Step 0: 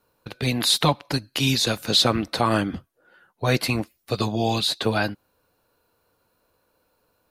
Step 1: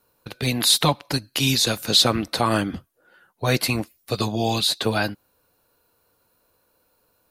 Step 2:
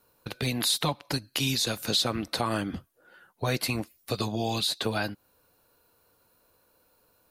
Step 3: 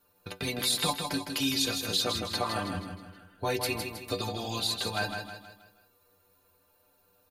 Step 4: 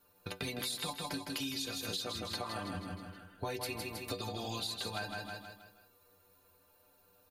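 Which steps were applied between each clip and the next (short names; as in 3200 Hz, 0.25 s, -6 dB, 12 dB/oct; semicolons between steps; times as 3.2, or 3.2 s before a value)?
high shelf 6300 Hz +7.5 dB
compressor 2:1, threshold -30 dBFS, peak gain reduction 10 dB
metallic resonator 89 Hz, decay 0.24 s, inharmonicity 0.008; on a send: feedback echo 0.159 s, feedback 44%, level -6 dB; on the sum: gain +6 dB
compressor, threshold -36 dBFS, peak gain reduction 12 dB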